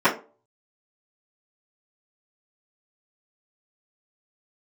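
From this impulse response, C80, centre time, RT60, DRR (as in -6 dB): 17.5 dB, 17 ms, 0.35 s, -13.5 dB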